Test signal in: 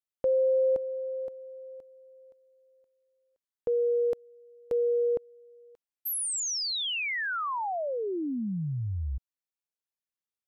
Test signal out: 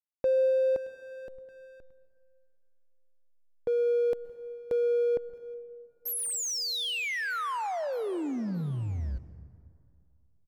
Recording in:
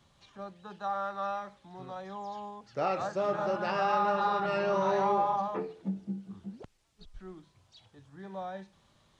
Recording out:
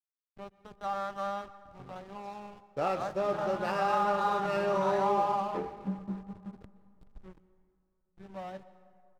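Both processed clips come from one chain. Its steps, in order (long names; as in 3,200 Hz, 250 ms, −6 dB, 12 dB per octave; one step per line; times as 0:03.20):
on a send: repeating echo 623 ms, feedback 56%, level −22 dB
on the sum: slack as between gear wheels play −37 dBFS
dense smooth reverb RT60 2.5 s, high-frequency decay 0.5×, pre-delay 110 ms, DRR 16 dB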